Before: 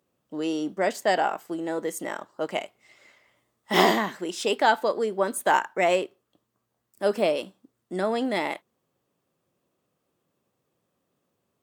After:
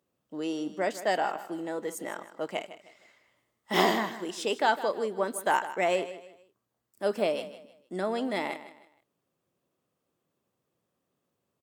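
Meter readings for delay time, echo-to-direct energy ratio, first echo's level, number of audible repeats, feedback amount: 156 ms, −13.5 dB, −14.0 dB, 3, 33%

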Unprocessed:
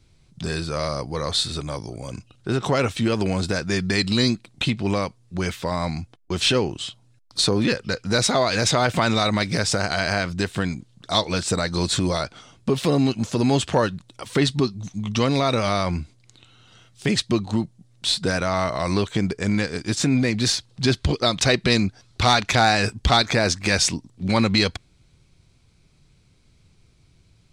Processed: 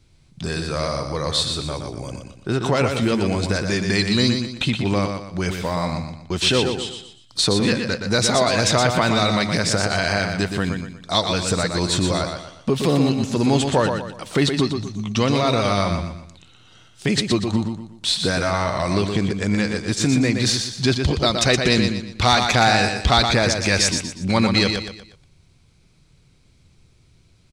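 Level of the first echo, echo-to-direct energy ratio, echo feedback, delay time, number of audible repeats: −6.0 dB, −5.5 dB, 37%, 120 ms, 4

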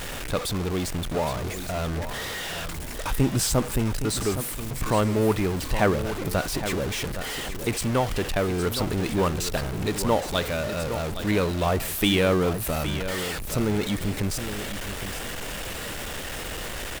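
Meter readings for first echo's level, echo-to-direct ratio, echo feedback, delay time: −10.5 dB, −10.5 dB, 22%, 815 ms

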